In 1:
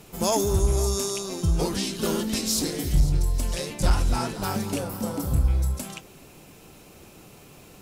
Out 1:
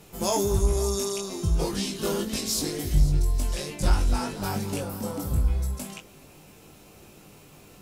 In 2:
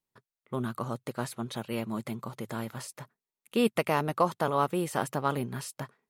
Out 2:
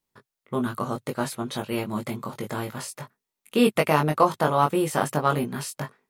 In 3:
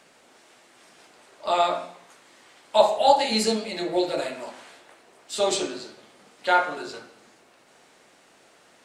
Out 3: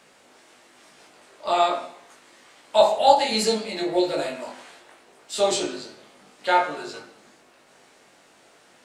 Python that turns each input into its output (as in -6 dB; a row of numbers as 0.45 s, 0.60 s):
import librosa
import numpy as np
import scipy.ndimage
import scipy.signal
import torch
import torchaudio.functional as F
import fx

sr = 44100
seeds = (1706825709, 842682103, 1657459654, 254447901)

y = fx.doubler(x, sr, ms=20.0, db=-4.0)
y = y * 10.0 ** (-26 / 20.0) / np.sqrt(np.mean(np.square(y)))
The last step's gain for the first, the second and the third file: -3.5 dB, +5.0 dB, 0.0 dB